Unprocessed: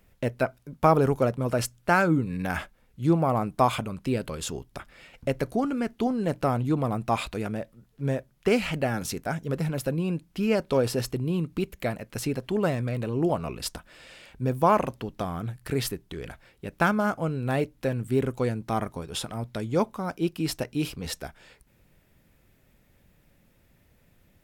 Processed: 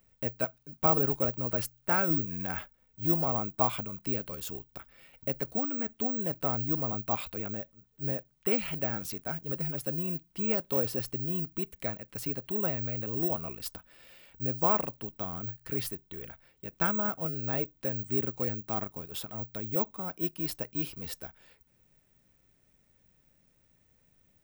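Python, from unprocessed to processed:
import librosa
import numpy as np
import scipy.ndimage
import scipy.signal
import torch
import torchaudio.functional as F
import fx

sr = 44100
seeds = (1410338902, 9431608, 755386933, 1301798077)

y = (np.kron(x[::2], np.eye(2)[0]) * 2)[:len(x)]
y = F.gain(torch.from_numpy(y), -8.5).numpy()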